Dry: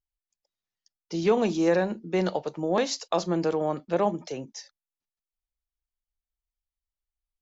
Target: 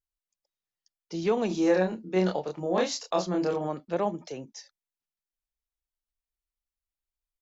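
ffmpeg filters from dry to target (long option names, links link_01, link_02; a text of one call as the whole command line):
ffmpeg -i in.wav -filter_complex "[0:a]asplit=3[link_01][link_02][link_03];[link_01]afade=type=out:start_time=1.49:duration=0.02[link_04];[link_02]asplit=2[link_05][link_06];[link_06]adelay=27,volume=-2dB[link_07];[link_05][link_07]amix=inputs=2:normalize=0,afade=type=in:start_time=1.49:duration=0.02,afade=type=out:start_time=3.67:duration=0.02[link_08];[link_03]afade=type=in:start_time=3.67:duration=0.02[link_09];[link_04][link_08][link_09]amix=inputs=3:normalize=0,volume=-3.5dB" out.wav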